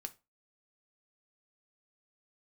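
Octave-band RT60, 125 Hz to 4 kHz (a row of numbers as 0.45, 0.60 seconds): 0.25, 0.30, 0.25, 0.25, 0.25, 0.20 seconds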